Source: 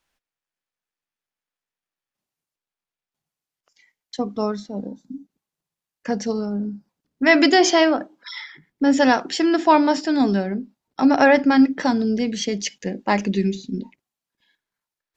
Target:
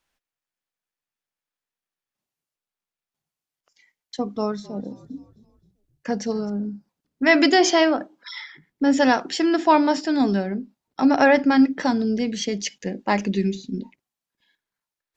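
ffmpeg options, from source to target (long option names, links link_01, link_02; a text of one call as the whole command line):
ffmpeg -i in.wav -filter_complex "[0:a]asettb=1/sr,asplit=3[link_01][link_02][link_03];[link_01]atrim=end=4.244[link_04];[link_02]atrim=start=4.24:end=6.5,asetpts=PTS-STARTPTS,afade=type=in:duration=0.004:curve=qsin,afade=type=out:start_time=2.256:duration=0.004:curve=qsin,asplit=5[link_05][link_06][link_07][link_08][link_09];[link_06]adelay=262,afreqshift=-46,volume=-20dB[link_10];[link_07]adelay=524,afreqshift=-92,volume=-26.6dB[link_11];[link_08]adelay=786,afreqshift=-138,volume=-33.1dB[link_12];[link_09]adelay=1048,afreqshift=-184,volume=-39.7dB[link_13];[link_05][link_10][link_11][link_12][link_13]amix=inputs=5:normalize=0,atrim=end_sample=99666[link_14];[link_03]atrim=start=6.496[link_15];[link_04][link_14]acrossfade=duration=0.004:curve1=hsin:curve2=qsin[link_16];[link_16][link_15]acrossfade=duration=0.004:curve1=qsin:curve2=hsin,volume=-1.5dB" out.wav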